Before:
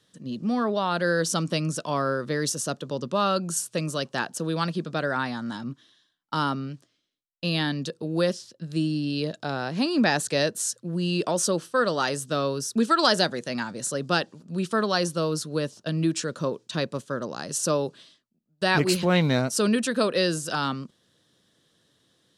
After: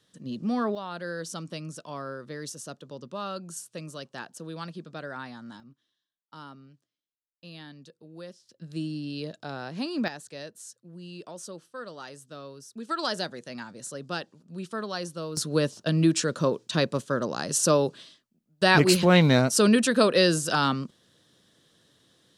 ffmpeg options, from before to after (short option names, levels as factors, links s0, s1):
-af "asetnsamples=n=441:p=0,asendcmd='0.75 volume volume -11dB;5.6 volume volume -19dB;8.49 volume volume -7dB;10.08 volume volume -16.5dB;12.89 volume volume -9dB;15.37 volume volume 3dB',volume=0.794"